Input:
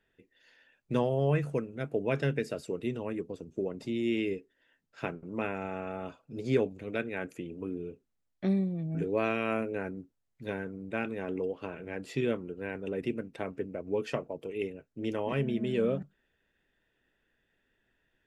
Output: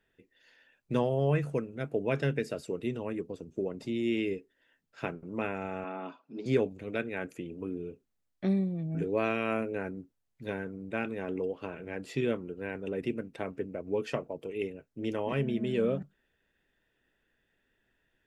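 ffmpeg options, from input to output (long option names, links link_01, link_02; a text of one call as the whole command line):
ffmpeg -i in.wav -filter_complex "[0:a]asettb=1/sr,asplit=3[link_01][link_02][link_03];[link_01]atrim=end=5.844[link_04];[link_02]atrim=start=5.84:end=6.46,asetpts=PTS-STARTPTS,afade=type=in:duration=0.004:curve=qsin,afade=type=out:start_time=0.616:duration=0.004:curve=qsin,highpass=frequency=200:width=0.5412,highpass=frequency=200:width=1.3066,equalizer=frequency=270:width_type=q:width=4:gain=3,equalizer=frequency=510:width_type=q:width=4:gain=-7,equalizer=frequency=1000:width_type=q:width=4:gain=7,lowpass=frequency=5000:width=0.5412,lowpass=frequency=5000:width=1.3066[link_05];[link_03]atrim=start=6.456[link_06];[link_04][link_05]acrossfade=duration=0.004:curve1=hsin:curve2=qsin[link_07];[link_07][link_06]acrossfade=duration=0.004:curve1=qsin:curve2=hsin" out.wav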